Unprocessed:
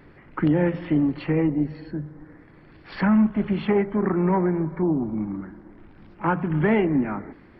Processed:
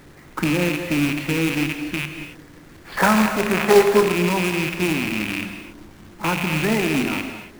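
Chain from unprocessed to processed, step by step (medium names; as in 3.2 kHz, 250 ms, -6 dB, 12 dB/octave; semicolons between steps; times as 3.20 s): rattle on loud lows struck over -34 dBFS, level -14 dBFS; 2.97–4.03 s: high-order bell 850 Hz +12.5 dB 2.5 oct; in parallel at +1 dB: compression 10:1, threshold -29 dBFS, peak gain reduction 21 dB; on the sum: companded quantiser 4-bit; gated-style reverb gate 310 ms flat, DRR 6 dB; trim -3.5 dB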